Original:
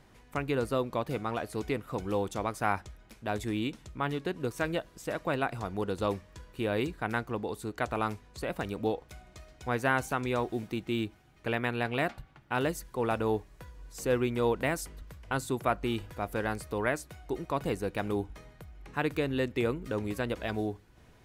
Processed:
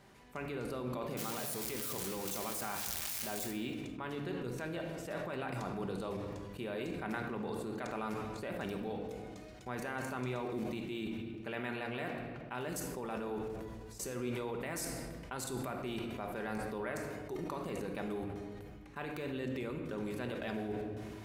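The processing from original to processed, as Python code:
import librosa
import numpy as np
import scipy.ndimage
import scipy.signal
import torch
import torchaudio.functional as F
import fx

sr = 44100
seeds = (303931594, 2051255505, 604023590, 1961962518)

y = fx.crossing_spikes(x, sr, level_db=-20.0, at=(1.17, 3.51))
y = fx.highpass(y, sr, hz=140.0, slope=6)
y = fx.level_steps(y, sr, step_db=21)
y = fx.room_shoebox(y, sr, seeds[0], volume_m3=1200.0, walls='mixed', distance_m=1.2)
y = fx.sustainer(y, sr, db_per_s=22.0)
y = F.gain(torch.from_numpy(y), 1.0).numpy()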